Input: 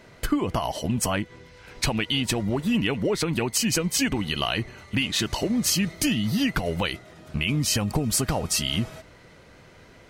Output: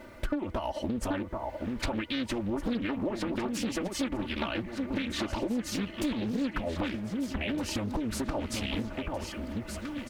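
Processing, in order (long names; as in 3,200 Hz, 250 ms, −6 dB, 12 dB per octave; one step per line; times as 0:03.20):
bass and treble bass 0 dB, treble −4 dB
on a send: delay that swaps between a low-pass and a high-pass 781 ms, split 1,400 Hz, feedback 63%, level −7 dB
on the sum: background noise white −61 dBFS
reversed playback
upward compression, threshold −32 dBFS
reversed playback
high-shelf EQ 2,800 Hz −10 dB
comb filter 3.4 ms, depth 92%
downward compressor 3 to 1, threshold −31 dBFS, peak gain reduction 13.5 dB
highs frequency-modulated by the lows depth 0.66 ms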